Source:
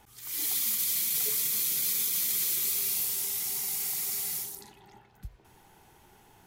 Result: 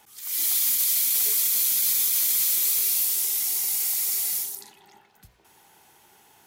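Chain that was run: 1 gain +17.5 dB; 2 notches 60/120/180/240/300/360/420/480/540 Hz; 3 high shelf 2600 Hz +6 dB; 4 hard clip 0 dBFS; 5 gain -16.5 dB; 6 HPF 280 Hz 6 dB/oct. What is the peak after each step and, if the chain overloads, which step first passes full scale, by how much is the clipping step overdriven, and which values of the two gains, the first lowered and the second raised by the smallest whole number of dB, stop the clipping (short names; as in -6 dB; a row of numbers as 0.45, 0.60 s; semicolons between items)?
+1.5, +1.5, +7.0, 0.0, -16.5, -15.5 dBFS; step 1, 7.0 dB; step 1 +10.5 dB, step 5 -9.5 dB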